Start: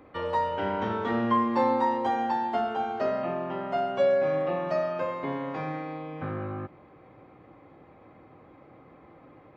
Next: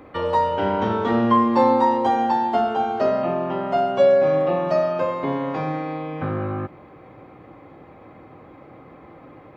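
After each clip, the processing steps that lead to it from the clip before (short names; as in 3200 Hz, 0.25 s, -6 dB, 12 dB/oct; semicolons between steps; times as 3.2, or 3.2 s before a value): dynamic EQ 1900 Hz, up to -5 dB, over -44 dBFS, Q 1.4; gain +8 dB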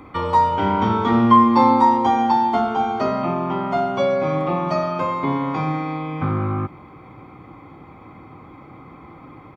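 comb 0.9 ms, depth 57%; gain +2 dB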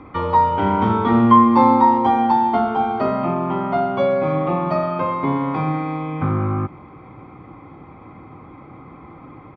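air absorption 260 m; gain +2 dB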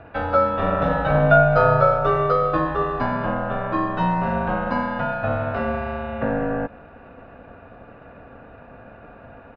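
ring modulator 380 Hz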